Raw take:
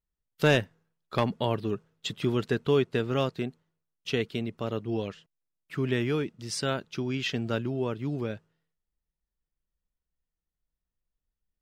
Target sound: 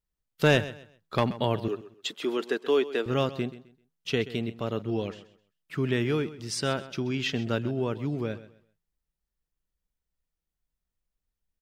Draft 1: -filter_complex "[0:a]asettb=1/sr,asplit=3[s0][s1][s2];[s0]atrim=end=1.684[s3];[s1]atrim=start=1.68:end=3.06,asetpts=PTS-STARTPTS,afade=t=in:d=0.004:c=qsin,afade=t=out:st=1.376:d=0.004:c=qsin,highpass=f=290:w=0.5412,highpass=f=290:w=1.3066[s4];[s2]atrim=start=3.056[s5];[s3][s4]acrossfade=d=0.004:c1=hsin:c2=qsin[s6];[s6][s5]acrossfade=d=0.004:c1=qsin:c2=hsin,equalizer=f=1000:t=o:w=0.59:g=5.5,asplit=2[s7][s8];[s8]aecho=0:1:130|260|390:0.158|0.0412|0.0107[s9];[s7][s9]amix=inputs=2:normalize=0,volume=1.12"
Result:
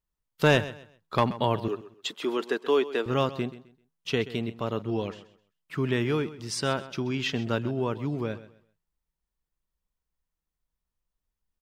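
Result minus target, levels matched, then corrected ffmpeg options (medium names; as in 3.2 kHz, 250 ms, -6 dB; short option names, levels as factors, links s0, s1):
1 kHz band +3.0 dB
-filter_complex "[0:a]asettb=1/sr,asplit=3[s0][s1][s2];[s0]atrim=end=1.684[s3];[s1]atrim=start=1.68:end=3.06,asetpts=PTS-STARTPTS,afade=t=in:d=0.004:c=qsin,afade=t=out:st=1.376:d=0.004:c=qsin,highpass=f=290:w=0.5412,highpass=f=290:w=1.3066[s4];[s2]atrim=start=3.056[s5];[s3][s4]acrossfade=d=0.004:c1=hsin:c2=qsin[s6];[s6][s5]acrossfade=d=0.004:c1=qsin:c2=hsin,asplit=2[s7][s8];[s8]aecho=0:1:130|260|390:0.158|0.0412|0.0107[s9];[s7][s9]amix=inputs=2:normalize=0,volume=1.12"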